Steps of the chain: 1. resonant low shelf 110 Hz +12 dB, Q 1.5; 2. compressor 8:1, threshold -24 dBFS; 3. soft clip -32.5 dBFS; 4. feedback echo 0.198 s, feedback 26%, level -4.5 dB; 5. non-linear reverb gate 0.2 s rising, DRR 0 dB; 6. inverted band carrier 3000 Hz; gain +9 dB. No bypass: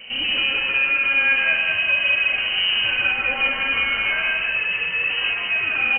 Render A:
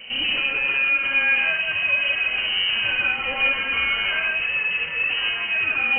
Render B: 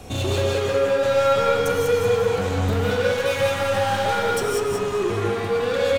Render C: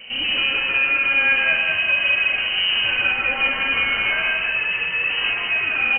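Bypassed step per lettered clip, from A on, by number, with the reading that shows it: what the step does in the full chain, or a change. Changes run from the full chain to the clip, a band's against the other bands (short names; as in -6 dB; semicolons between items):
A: 4, loudness change -1.5 LU; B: 6, 2 kHz band -23.5 dB; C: 2, mean gain reduction 2.5 dB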